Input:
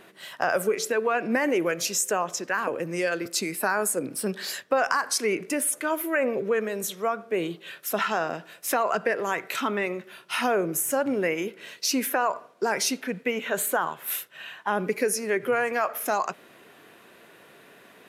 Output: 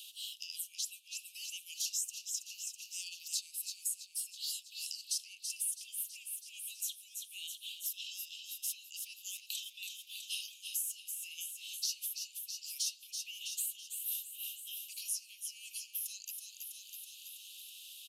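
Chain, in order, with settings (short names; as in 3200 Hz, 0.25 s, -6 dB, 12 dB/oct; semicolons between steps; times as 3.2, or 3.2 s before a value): steep high-pass 2800 Hz 96 dB/oct; feedback echo 0.326 s, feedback 54%, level -10 dB; three-band squash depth 70%; gain -6 dB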